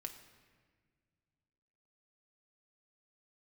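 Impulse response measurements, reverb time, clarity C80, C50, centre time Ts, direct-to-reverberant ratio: 1.7 s, 11.0 dB, 9.5 dB, 18 ms, 4.5 dB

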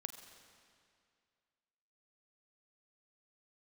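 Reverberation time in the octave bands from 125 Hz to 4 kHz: 2.3, 2.2, 2.3, 2.3, 2.2, 2.0 s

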